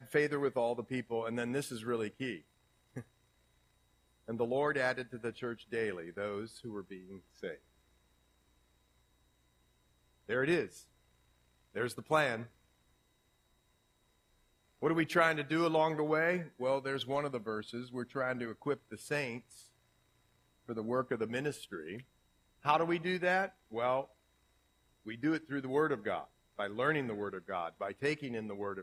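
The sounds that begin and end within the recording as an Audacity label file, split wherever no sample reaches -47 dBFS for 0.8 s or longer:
4.280000	7.560000	sound
10.290000	10.820000	sound
11.750000	12.460000	sound
14.820000	19.610000	sound
20.690000	24.050000	sound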